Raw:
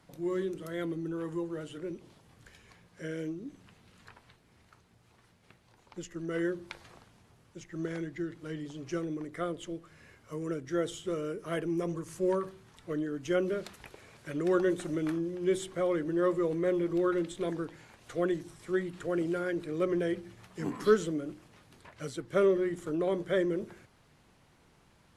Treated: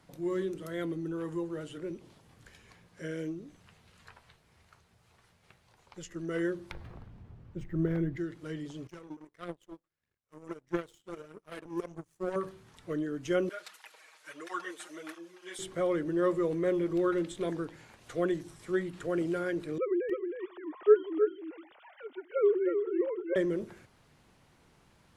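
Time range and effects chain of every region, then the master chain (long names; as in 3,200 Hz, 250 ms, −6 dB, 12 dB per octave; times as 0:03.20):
0:03.41–0:06.10: parametric band 270 Hz −8 dB 0.96 octaves + double-tracking delay 13 ms −12 dB
0:06.71–0:08.17: RIAA equalisation playback + linearly interpolated sample-rate reduction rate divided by 3×
0:08.87–0:12.36: phase shifter 1.6 Hz, delay 4.1 ms + power curve on the samples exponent 2
0:13.49–0:15.59: high-pass filter 900 Hz + comb filter 6.4 ms, depth 96% + through-zero flanger with one copy inverted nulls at 1.5 Hz, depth 7.3 ms
0:19.78–0:23.36: three sine waves on the formant tracks + upward compression, threshold −44 dBFS + single-tap delay 315 ms −6.5 dB
whole clip: no processing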